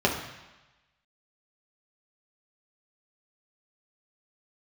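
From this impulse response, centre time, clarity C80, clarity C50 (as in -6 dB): 31 ms, 8.5 dB, 6.5 dB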